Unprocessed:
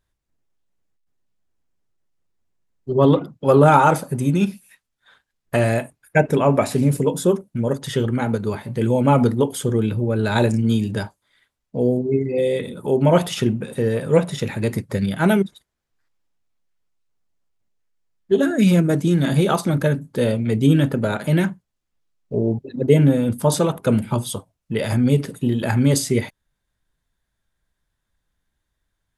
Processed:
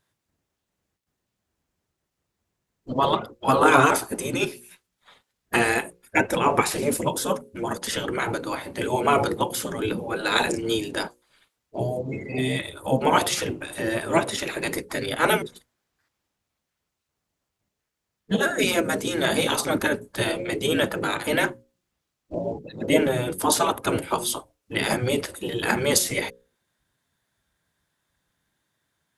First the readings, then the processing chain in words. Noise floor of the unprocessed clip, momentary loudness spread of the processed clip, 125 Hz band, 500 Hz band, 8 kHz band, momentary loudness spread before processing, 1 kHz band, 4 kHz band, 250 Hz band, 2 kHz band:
-78 dBFS, 10 LU, -13.5 dB, -5.5 dB, +3.5 dB, 9 LU, -0.5 dB, +4.5 dB, -8.5 dB, +3.5 dB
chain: notches 60/120/180/240/300/360/420/480/540 Hz; spectral gate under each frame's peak -10 dB weak; gain +5.5 dB

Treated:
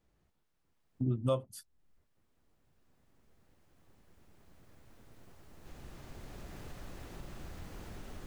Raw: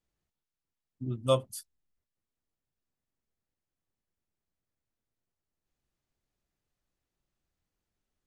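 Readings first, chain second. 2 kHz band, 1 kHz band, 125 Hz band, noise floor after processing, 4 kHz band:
+2.0 dB, -6.0 dB, +1.0 dB, -75 dBFS, -9.5 dB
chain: recorder AGC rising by 5.7 dB/s; high shelf 2500 Hz -11 dB; compressor 2:1, threshold -53 dBFS, peak gain reduction 17.5 dB; gain +11.5 dB

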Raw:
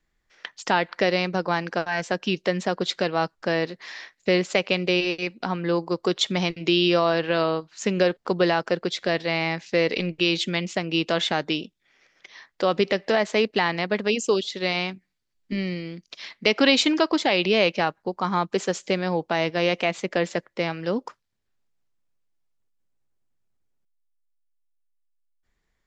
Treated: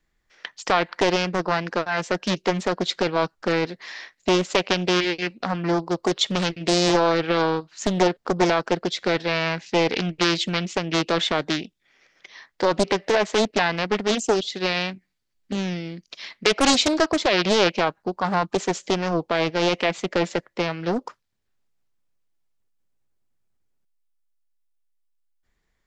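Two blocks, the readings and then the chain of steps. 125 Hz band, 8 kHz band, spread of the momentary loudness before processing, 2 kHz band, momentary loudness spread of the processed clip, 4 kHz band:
+1.5 dB, +6.0 dB, 9 LU, 0.0 dB, 8 LU, +1.0 dB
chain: Doppler distortion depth 0.84 ms; gain +1.5 dB

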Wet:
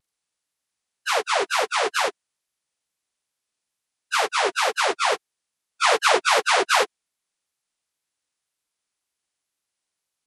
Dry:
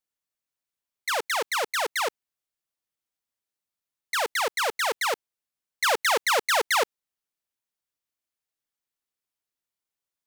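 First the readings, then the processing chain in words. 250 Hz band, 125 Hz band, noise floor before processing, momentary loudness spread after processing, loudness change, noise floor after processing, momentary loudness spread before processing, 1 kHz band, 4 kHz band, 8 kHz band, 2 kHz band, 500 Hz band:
+8.0 dB, n/a, under -85 dBFS, 8 LU, +4.0 dB, -84 dBFS, 8 LU, +5.0 dB, +4.0 dB, +2.5 dB, +3.5 dB, +4.5 dB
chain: inharmonic rescaling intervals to 85%; wow and flutter 130 cents; gain +7.5 dB

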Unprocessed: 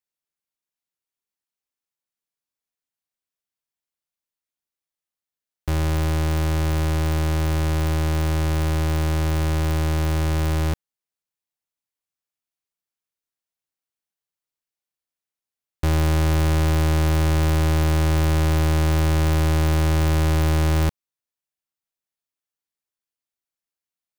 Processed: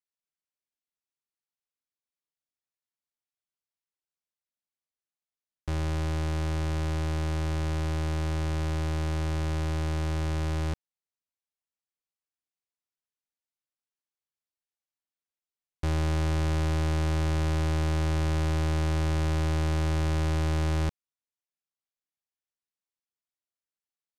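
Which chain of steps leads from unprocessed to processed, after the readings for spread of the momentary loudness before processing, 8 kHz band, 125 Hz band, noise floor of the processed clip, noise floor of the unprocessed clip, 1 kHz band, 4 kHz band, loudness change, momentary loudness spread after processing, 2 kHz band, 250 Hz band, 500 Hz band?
3 LU, -9.5 dB, -7.5 dB, under -85 dBFS, under -85 dBFS, -7.5 dB, -7.5 dB, -7.5 dB, 3 LU, -7.5 dB, -7.5 dB, -7.5 dB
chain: LPF 8500 Hz 12 dB/oct; gain -7.5 dB

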